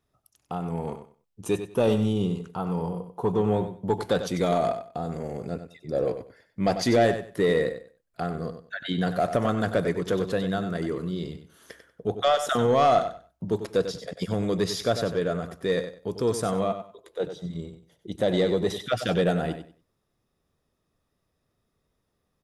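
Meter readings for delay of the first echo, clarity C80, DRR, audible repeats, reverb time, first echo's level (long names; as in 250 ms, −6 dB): 95 ms, no reverb audible, no reverb audible, 2, no reverb audible, −10.0 dB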